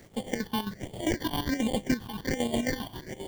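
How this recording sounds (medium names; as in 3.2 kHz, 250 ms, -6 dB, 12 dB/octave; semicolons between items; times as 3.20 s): aliases and images of a low sample rate 1.3 kHz, jitter 0%; phasing stages 6, 1.3 Hz, lowest notch 510–1600 Hz; a quantiser's noise floor 10-bit, dither none; chopped level 7.5 Hz, depth 65%, duty 55%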